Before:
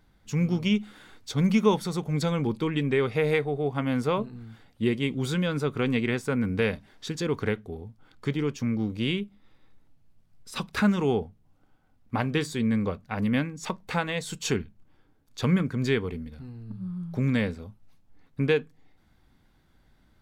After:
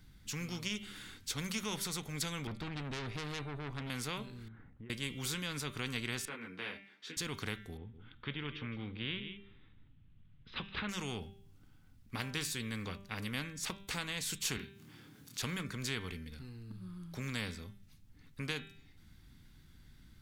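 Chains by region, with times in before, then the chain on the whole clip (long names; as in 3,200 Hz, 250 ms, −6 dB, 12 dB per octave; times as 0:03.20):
0:02.47–0:03.90: spectral tilt −3 dB per octave + tube saturation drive 24 dB, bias 0.5
0:04.48–0:04.90: low-pass filter 1,600 Hz 24 dB per octave + downward compressor 2.5 to 1, threshold −47 dBFS
0:06.25–0:07.17: high-pass filter 130 Hz + three-way crossover with the lows and the highs turned down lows −24 dB, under 290 Hz, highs −18 dB, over 3,300 Hz + micro pitch shift up and down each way 16 cents
0:07.77–0:10.89: elliptic low-pass filter 3,400 Hz, stop band 60 dB + single-tap delay 165 ms −15 dB
0:14.57–0:15.42: high-pass filter 130 Hz 24 dB per octave + upward compression, threshold −47 dBFS + double-tracking delay 26 ms −3 dB
whole clip: guitar amp tone stack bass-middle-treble 6-0-2; hum removal 197 Hz, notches 21; every bin compressed towards the loudest bin 2 to 1; level +8.5 dB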